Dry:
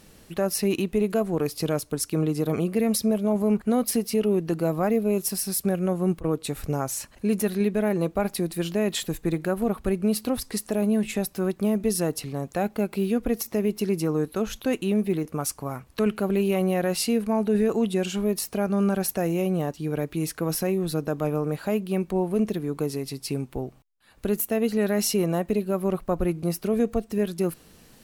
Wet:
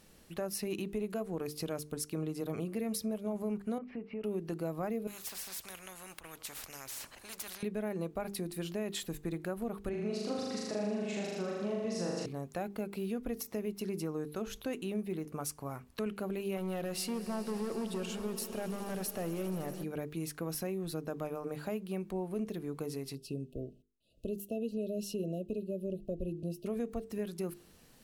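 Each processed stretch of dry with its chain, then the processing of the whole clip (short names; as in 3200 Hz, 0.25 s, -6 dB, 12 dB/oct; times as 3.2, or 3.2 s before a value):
3.78–4.24 Chebyshev low-pass 2500 Hz, order 4 + compressor 2:1, threshold -32 dBFS
5.07–7.63 low shelf 180 Hz -8 dB + spectral compressor 4:1
9.89–12.26 Chebyshev band-pass 110–6500 Hz, order 3 + flutter echo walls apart 6.8 m, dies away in 1.4 s
16.57–19.84 hard clip -21 dBFS + swelling echo 80 ms, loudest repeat 5, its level -18 dB
23.15–26.66 brick-wall FIR band-stop 690–2500 Hz + high shelf 3200 Hz -11 dB
whole clip: notches 50/100/150/200/250/300/350/400/450 Hz; compressor 2:1, threshold -27 dBFS; gain -8 dB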